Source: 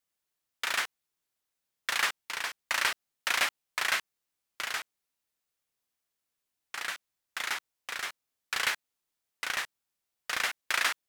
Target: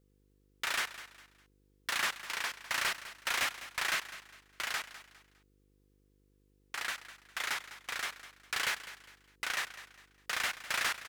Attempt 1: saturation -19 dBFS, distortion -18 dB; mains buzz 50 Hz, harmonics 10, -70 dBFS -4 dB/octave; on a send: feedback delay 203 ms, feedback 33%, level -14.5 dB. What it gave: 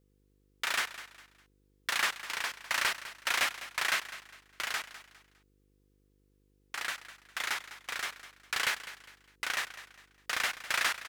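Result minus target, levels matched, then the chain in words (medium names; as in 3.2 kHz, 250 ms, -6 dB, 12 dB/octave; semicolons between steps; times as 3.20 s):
saturation: distortion -7 dB
saturation -26 dBFS, distortion -10 dB; mains buzz 50 Hz, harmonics 10, -70 dBFS -4 dB/octave; on a send: feedback delay 203 ms, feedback 33%, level -14.5 dB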